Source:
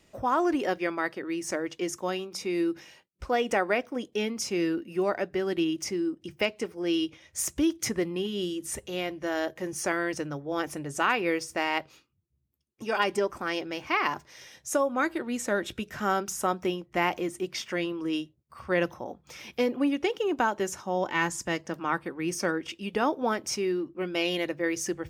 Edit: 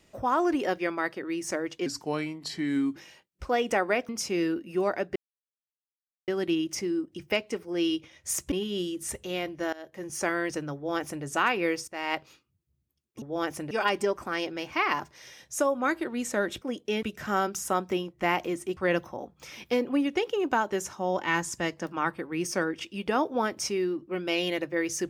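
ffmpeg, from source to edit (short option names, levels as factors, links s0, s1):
-filter_complex "[0:a]asplit=13[s0][s1][s2][s3][s4][s5][s6][s7][s8][s9][s10][s11][s12];[s0]atrim=end=1.864[s13];[s1]atrim=start=1.86:end=2.76,asetpts=PTS-STARTPTS,asetrate=36162,aresample=44100,atrim=end_sample=48402,asetpts=PTS-STARTPTS[s14];[s2]atrim=start=2.756:end=3.892[s15];[s3]atrim=start=4.298:end=5.37,asetpts=PTS-STARTPTS,afade=t=out:st=1.068:d=0.004:c=hsin,apad=pad_dur=1.12[s16];[s4]atrim=start=5.37:end=7.612,asetpts=PTS-STARTPTS,afade=t=in:d=0.004:c=hsin[s17];[s5]atrim=start=8.148:end=9.36,asetpts=PTS-STARTPTS,afade=t=out:st=1.208:d=0.004:c=hsin:silence=0.0794328[s18];[s6]atrim=start=9.36:end=11.51,asetpts=PTS-STARTPTS,afade=t=in:d=0.52:silence=0.0794328,afade=t=out:st=2.146:d=0.004:c=hsin:silence=0.125893[s19];[s7]atrim=start=11.51:end=12.852,asetpts=PTS-STARTPTS,afade=t=in:d=0.28:silence=0.125893[s20];[s8]atrim=start=10.378:end=10.872[s21];[s9]atrim=start=12.848:end=15.762[s22];[s10]atrim=start=3.888:end=4.302[s23];[s11]atrim=start=15.758:end=17.502[s24];[s12]atrim=start=18.638[s25];[s13][s14]acrossfade=d=0.004:c1=hsin:c2=hsin[s26];[s26][s15]acrossfade=d=0.004:c1=hsin:c2=hsin[s27];[s16][s17]concat=n=2:v=0:a=1[s28];[s27][s28]acrossfade=d=0.004:c1=hsin:c2=hsin[s29];[s18][s19][s20]concat=n=3:v=0:a=1[s30];[s29][s30]acrossfade=d=0.004:c1=hsin:c2=hsin[s31];[s31][s21]acrossfade=d=0.004:c1=hsin:c2=hsin[s32];[s32][s22]acrossfade=d=0.004:c1=hsin:c2=hsin[s33];[s33][s23]acrossfade=d=0.004:c1=hsin:c2=hsin[s34];[s34][s24]acrossfade=d=0.004:c1=hsin:c2=hsin[s35];[s35][s25]acrossfade=d=0.004:c1=hsin:c2=hsin"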